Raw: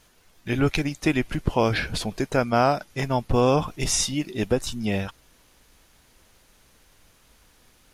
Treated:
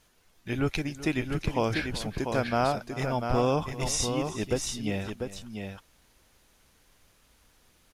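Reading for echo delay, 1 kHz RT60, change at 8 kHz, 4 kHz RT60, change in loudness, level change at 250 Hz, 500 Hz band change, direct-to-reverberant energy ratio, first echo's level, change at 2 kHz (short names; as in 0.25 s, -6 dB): 0.379 s, none, -5.0 dB, none, -5.5 dB, -5.0 dB, -5.0 dB, none, -16.5 dB, -5.0 dB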